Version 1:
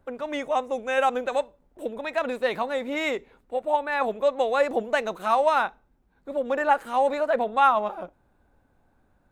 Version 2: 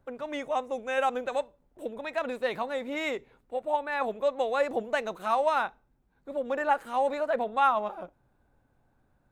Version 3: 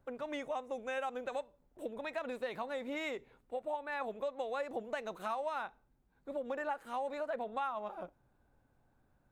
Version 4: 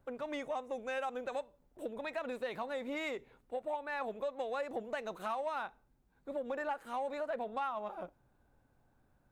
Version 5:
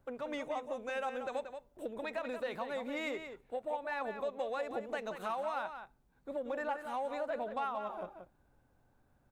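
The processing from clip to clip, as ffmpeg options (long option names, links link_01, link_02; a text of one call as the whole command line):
ffmpeg -i in.wav -af "equalizer=frequency=130:width=6.5:gain=9,volume=-4.5dB" out.wav
ffmpeg -i in.wav -af "acompressor=threshold=-32dB:ratio=4,volume=-3.5dB" out.wav
ffmpeg -i in.wav -af "asoftclip=type=tanh:threshold=-27dB,volume=1dB" out.wav
ffmpeg -i in.wav -filter_complex "[0:a]asplit=2[link_01][link_02];[link_02]adelay=180.8,volume=-8dB,highshelf=frequency=4000:gain=-4.07[link_03];[link_01][link_03]amix=inputs=2:normalize=0" out.wav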